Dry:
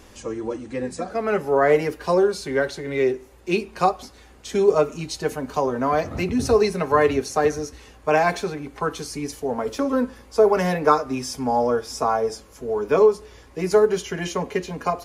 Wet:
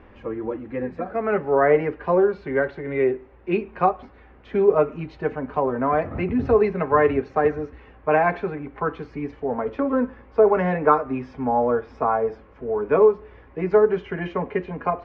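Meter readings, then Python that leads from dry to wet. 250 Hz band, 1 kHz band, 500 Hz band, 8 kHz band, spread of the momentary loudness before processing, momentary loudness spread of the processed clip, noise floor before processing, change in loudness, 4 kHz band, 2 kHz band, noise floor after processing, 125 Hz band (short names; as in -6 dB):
0.0 dB, 0.0 dB, 0.0 dB, under -35 dB, 12 LU, 12 LU, -48 dBFS, 0.0 dB, under -15 dB, -1.0 dB, -50 dBFS, 0.0 dB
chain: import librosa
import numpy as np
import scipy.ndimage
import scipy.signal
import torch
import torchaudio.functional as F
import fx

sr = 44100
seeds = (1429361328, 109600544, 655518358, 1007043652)

y = scipy.signal.sosfilt(scipy.signal.butter(4, 2300.0, 'lowpass', fs=sr, output='sos'), x)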